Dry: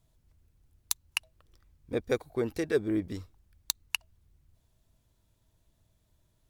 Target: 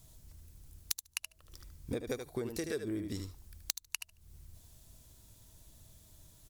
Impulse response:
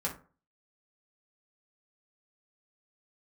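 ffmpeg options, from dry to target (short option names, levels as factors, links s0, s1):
-filter_complex "[0:a]bass=f=250:g=2,treble=f=4000:g=11,asplit=2[s0][s1];[s1]aecho=0:1:76:0.376[s2];[s0][s2]amix=inputs=2:normalize=0,acompressor=threshold=0.00794:ratio=8,asplit=2[s3][s4];[s4]aecho=0:1:73|146:0.075|0.024[s5];[s3][s5]amix=inputs=2:normalize=0,volume=2.37"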